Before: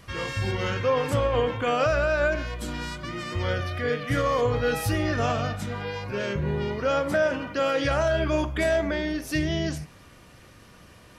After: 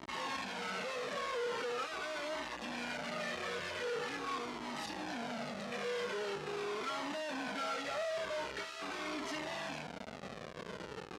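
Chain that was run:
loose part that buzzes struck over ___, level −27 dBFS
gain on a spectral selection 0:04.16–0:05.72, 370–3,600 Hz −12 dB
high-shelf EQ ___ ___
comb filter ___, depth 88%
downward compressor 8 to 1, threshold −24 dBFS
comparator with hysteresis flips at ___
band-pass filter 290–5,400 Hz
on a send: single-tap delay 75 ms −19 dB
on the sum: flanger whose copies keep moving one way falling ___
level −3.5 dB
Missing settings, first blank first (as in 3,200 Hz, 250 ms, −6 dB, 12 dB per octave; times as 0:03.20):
−31 dBFS, 4,000 Hz, −8.5 dB, 4.6 ms, −45 dBFS, 0.43 Hz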